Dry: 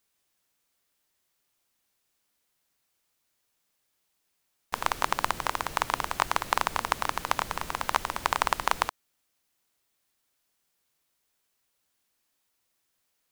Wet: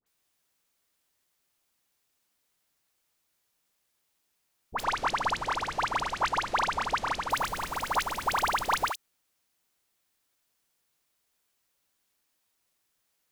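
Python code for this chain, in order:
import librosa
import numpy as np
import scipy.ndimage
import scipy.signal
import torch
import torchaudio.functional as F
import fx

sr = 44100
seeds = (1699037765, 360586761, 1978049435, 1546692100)

y = fx.lowpass(x, sr, hz=6500.0, slope=12, at=(4.77, 7.24))
y = fx.dispersion(y, sr, late='highs', ms=64.0, hz=1400.0)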